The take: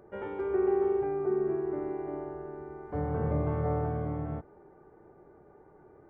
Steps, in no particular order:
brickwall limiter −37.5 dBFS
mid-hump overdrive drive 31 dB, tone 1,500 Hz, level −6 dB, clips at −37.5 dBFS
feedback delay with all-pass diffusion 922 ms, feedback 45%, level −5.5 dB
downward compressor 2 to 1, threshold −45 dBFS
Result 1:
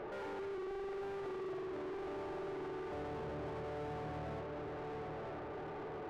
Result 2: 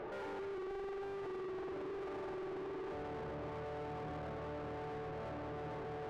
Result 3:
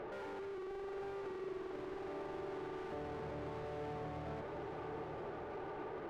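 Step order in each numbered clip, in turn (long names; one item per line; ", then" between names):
downward compressor, then brickwall limiter, then feedback delay with all-pass diffusion, then mid-hump overdrive
feedback delay with all-pass diffusion, then brickwall limiter, then downward compressor, then mid-hump overdrive
brickwall limiter, then mid-hump overdrive, then downward compressor, then feedback delay with all-pass diffusion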